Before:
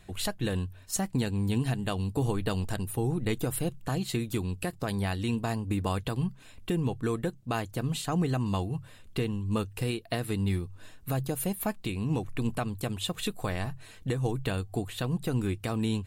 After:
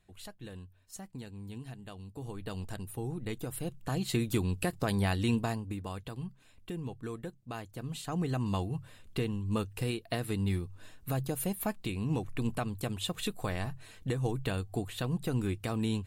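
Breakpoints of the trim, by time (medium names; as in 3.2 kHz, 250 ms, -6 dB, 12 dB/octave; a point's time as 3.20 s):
2.12 s -15.5 dB
2.61 s -8 dB
3.51 s -8 dB
4.22 s +1 dB
5.36 s +1 dB
5.80 s -10 dB
7.73 s -10 dB
8.45 s -2.5 dB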